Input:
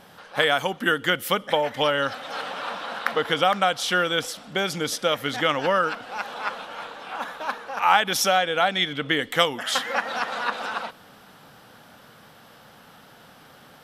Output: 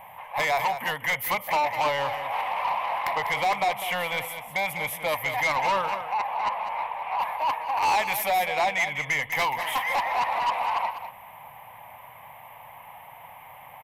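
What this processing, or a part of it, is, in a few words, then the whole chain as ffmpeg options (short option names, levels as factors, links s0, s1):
saturation between pre-emphasis and de-emphasis: -filter_complex "[0:a]asettb=1/sr,asplit=3[s0][s1][s2];[s0]atrim=end=6.034[s3];[s1]atrim=start=6.03:end=7.19,asetpts=PTS-STARTPTS,afade=t=in:d=0.004:c=qsin,afade=t=out:st=1.156:d=0.004:c=qsin,acrossover=split=2700[s4][s5];[s5]acompressor=threshold=0.00282:ratio=4:attack=1:release=60[s6];[s4][s6]amix=inputs=2:normalize=0[s7];[s2]atrim=start=7.186[s8];[s3][s7]acrossfade=d=0.004:c1=hsin:c2=qsin[s9];[s9][s8]acrossfade=d=0.004:c1=qsin:c2=hsin,firequalizer=gain_entry='entry(110,0);entry(220,-14);entry(350,-19);entry(620,4);entry(990,14);entry(1400,-14);entry(2100,11);entry(4500,-26);entry(12000,8)':delay=0.05:min_phase=1,highshelf=f=10000:g=8,asoftclip=type=tanh:threshold=0.0944,highshelf=f=10000:g=-8,aecho=1:1:199:0.316"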